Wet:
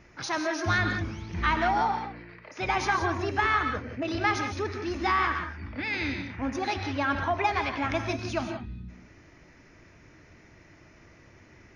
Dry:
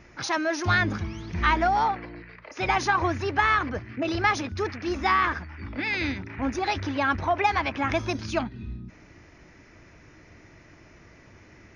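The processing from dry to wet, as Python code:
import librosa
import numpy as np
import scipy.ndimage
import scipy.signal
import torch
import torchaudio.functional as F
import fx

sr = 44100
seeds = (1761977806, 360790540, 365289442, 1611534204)

y = fx.rev_gated(x, sr, seeds[0], gate_ms=200, shape='rising', drr_db=5.5)
y = F.gain(torch.from_numpy(y), -3.5).numpy()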